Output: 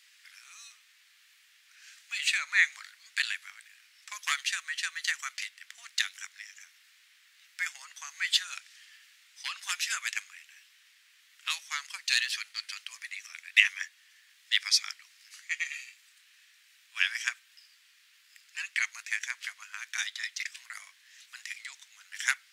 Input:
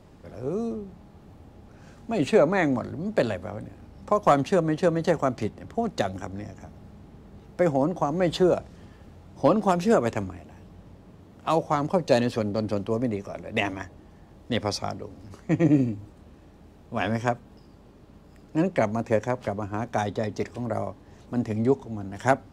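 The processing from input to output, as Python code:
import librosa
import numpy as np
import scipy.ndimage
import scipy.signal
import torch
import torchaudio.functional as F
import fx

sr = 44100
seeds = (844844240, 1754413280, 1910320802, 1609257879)

y = scipy.signal.sosfilt(scipy.signal.butter(6, 1800.0, 'highpass', fs=sr, output='sos'), x)
y = F.gain(torch.from_numpy(y), 8.5).numpy()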